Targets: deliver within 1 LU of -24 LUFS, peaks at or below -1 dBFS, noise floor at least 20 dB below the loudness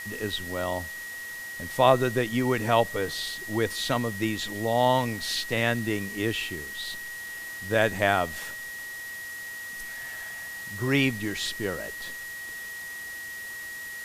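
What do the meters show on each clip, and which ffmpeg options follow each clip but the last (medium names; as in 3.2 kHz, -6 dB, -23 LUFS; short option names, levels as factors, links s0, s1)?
steady tone 1.9 kHz; tone level -36 dBFS; noise floor -38 dBFS; noise floor target -49 dBFS; loudness -28.5 LUFS; peak level -5.0 dBFS; loudness target -24.0 LUFS
-> -af "bandreject=f=1900:w=30"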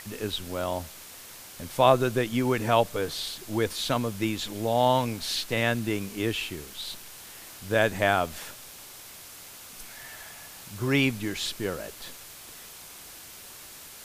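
steady tone not found; noise floor -46 dBFS; noise floor target -47 dBFS
-> -af "afftdn=nr=6:nf=-46"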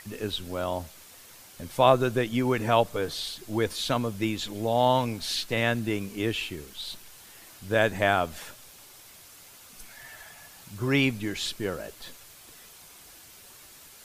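noise floor -51 dBFS; loudness -27.0 LUFS; peak level -4.5 dBFS; loudness target -24.0 LUFS
-> -af "volume=1.41"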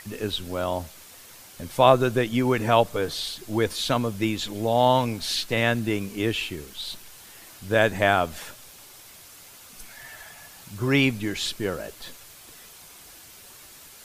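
loudness -24.0 LUFS; peak level -1.5 dBFS; noise floor -48 dBFS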